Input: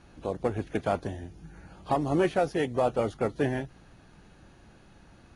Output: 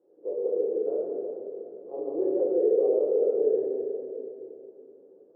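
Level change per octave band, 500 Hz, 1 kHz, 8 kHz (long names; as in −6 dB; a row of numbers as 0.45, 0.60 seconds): +5.5 dB, −16.5 dB, below −30 dB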